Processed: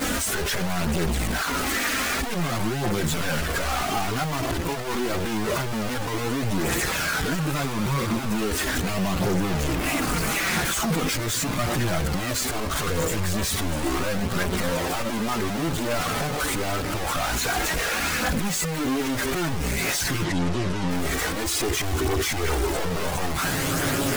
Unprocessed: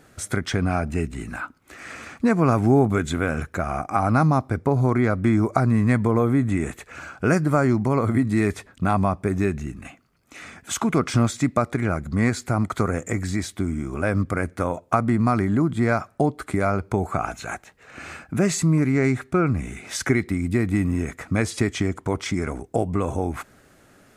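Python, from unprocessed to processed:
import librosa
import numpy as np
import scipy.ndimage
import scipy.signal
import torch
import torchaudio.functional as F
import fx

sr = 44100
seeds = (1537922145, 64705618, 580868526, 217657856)

y = np.sign(x) * np.sqrt(np.mean(np.square(x)))
y = fx.lowpass(y, sr, hz=6900.0, slope=12, at=(20.22, 20.88), fade=0.02)
y = fx.chorus_voices(y, sr, voices=4, hz=0.13, base_ms=15, depth_ms=3.8, mix_pct=70)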